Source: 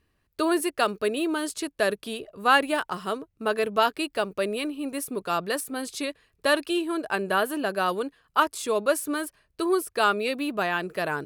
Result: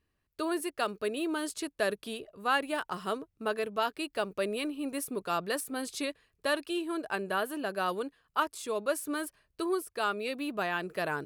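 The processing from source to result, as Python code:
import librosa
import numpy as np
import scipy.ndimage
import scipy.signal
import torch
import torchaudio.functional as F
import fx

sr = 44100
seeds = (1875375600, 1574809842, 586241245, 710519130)

y = fx.rider(x, sr, range_db=3, speed_s=0.5)
y = F.gain(torch.from_numpy(y), -6.5).numpy()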